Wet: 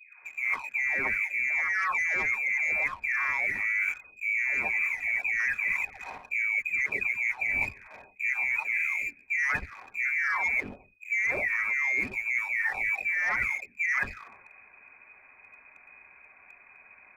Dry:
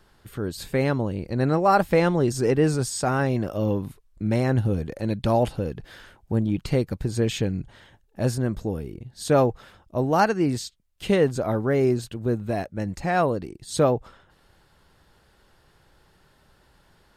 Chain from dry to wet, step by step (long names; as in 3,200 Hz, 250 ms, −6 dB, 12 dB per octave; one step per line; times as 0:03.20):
every frequency bin delayed by itself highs late, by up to 805 ms
voice inversion scrambler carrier 2,500 Hz
leveller curve on the samples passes 1
brickwall limiter −17 dBFS, peak gain reduction 8 dB
reversed playback
downward compressor 6 to 1, threshold −34 dBFS, peak gain reduction 13 dB
reversed playback
level +7.5 dB